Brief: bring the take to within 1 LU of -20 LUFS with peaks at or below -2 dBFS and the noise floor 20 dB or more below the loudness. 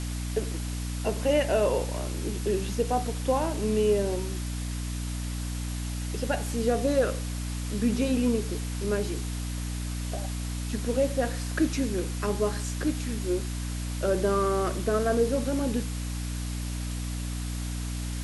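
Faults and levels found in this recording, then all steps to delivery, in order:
hum 60 Hz; harmonics up to 300 Hz; hum level -30 dBFS; noise floor -33 dBFS; noise floor target -49 dBFS; loudness -29.0 LUFS; peak -13.0 dBFS; loudness target -20.0 LUFS
-> de-hum 60 Hz, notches 5; noise print and reduce 16 dB; gain +9 dB

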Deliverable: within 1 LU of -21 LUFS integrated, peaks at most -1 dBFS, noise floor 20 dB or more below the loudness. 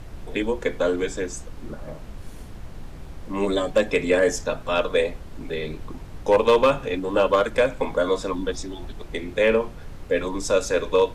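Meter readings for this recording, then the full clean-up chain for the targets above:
clipped 0.5%; flat tops at -10.0 dBFS; noise floor -39 dBFS; noise floor target -43 dBFS; loudness -23.0 LUFS; peak -10.0 dBFS; loudness target -21.0 LUFS
-> clip repair -10 dBFS; noise print and reduce 6 dB; gain +2 dB

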